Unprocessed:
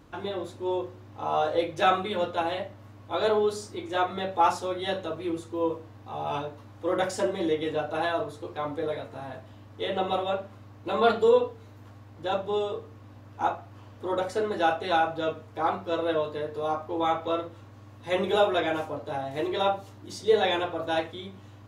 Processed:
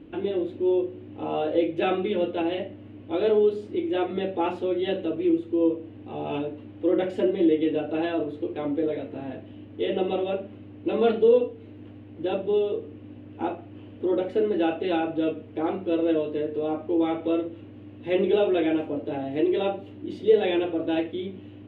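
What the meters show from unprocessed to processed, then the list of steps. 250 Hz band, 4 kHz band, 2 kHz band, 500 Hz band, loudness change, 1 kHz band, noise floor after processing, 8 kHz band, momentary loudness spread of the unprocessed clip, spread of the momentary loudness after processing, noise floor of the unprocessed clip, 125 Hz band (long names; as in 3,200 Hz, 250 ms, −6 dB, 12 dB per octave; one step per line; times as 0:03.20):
+9.0 dB, −4.0 dB, −4.5 dB, +3.0 dB, +2.0 dB, −6.5 dB, −45 dBFS, below −20 dB, 14 LU, 15 LU, −49 dBFS, +0.5 dB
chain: drawn EQ curve 130 Hz 0 dB, 320 Hz +13 dB, 1,100 Hz −10 dB, 2,900 Hz +5 dB, 5,500 Hz −22 dB
in parallel at −1 dB: downward compressor, threshold −27 dBFS, peak gain reduction 16.5 dB
on the sum: level −5 dB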